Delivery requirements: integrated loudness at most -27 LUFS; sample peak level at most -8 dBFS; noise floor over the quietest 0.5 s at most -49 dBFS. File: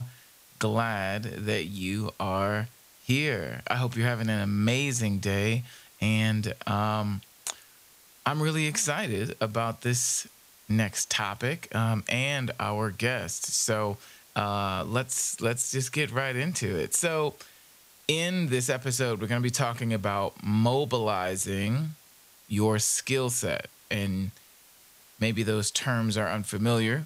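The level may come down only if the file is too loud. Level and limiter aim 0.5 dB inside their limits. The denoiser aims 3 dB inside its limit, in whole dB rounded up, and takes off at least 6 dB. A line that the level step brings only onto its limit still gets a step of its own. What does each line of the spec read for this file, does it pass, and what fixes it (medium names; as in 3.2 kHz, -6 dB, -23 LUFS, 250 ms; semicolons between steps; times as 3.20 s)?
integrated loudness -28.0 LUFS: pass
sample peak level -9.0 dBFS: pass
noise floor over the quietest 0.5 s -56 dBFS: pass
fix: none needed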